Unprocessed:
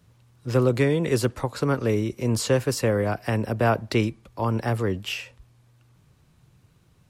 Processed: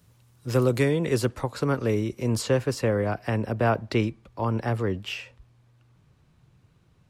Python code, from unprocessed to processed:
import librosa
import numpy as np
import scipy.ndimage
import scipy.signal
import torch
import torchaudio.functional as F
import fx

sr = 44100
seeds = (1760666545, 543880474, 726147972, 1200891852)

y = fx.high_shelf(x, sr, hz=6800.0, db=fx.steps((0.0, 8.5), (0.89, -2.0), (2.41, -10.5)))
y = y * librosa.db_to_amplitude(-1.5)